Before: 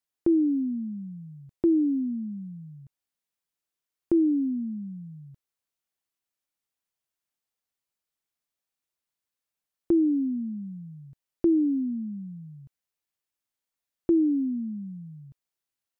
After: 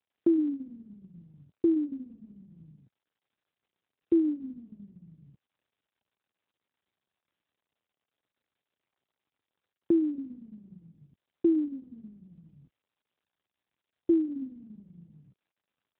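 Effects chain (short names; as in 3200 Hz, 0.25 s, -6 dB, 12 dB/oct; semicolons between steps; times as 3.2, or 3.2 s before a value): bell 250 Hz +6.5 dB 1.9 oct; gain -6 dB; AMR-NB 12.2 kbps 8000 Hz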